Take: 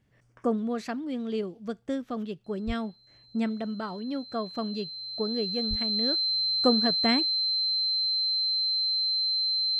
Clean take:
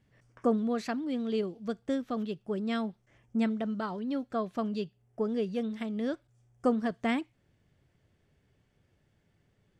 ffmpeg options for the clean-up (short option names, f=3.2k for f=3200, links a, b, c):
-filter_complex "[0:a]bandreject=f=4.1k:w=30,asplit=3[a][b][c];[a]afade=t=out:st=2.66:d=0.02[d];[b]highpass=f=140:w=0.5412,highpass=f=140:w=1.3066,afade=t=in:st=2.66:d=0.02,afade=t=out:st=2.78:d=0.02[e];[c]afade=t=in:st=2.78:d=0.02[f];[d][e][f]amix=inputs=3:normalize=0,asplit=3[g][h][i];[g]afade=t=out:st=5.69:d=0.02[j];[h]highpass=f=140:w=0.5412,highpass=f=140:w=1.3066,afade=t=in:st=5.69:d=0.02,afade=t=out:st=5.81:d=0.02[k];[i]afade=t=in:st=5.81:d=0.02[l];[j][k][l]amix=inputs=3:normalize=0,asetnsamples=n=441:p=0,asendcmd='6.15 volume volume -3.5dB',volume=0dB"